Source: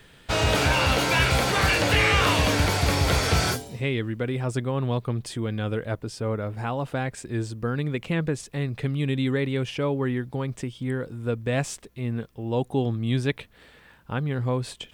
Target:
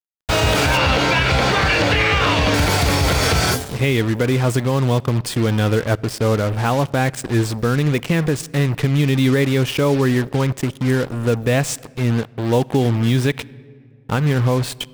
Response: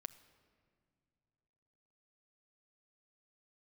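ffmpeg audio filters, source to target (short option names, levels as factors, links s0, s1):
-filter_complex "[0:a]acrusher=bits=5:mix=0:aa=0.5,asettb=1/sr,asplit=3[s0][s1][s2];[s0]atrim=end=0.774[s3];[s1]atrim=start=0.77:end=2.54,asetpts=PTS-STARTPTS,afade=t=in:d=0.004:c=qsin,afade=t=out:st=1.766:d=0.004:c=qsin,acrossover=split=6000[s4][s5];[s5]acompressor=threshold=0.00251:ratio=4:attack=1:release=60[s6];[s4][s6]amix=inputs=2:normalize=0[s7];[s2]atrim=start=2.536[s8];[s3][s7]acrossfade=d=0.004:c1=hsin:c2=qsin[s9];[s9][s8]acrossfade=d=0.004:c1=qsin:c2=hsin,asplit=2[s10][s11];[1:a]atrim=start_sample=2205[s12];[s11][s12]afir=irnorm=-1:irlink=0,volume=0.841[s13];[s10][s13]amix=inputs=2:normalize=0,alimiter=limit=0.188:level=0:latency=1:release=96,volume=2.24"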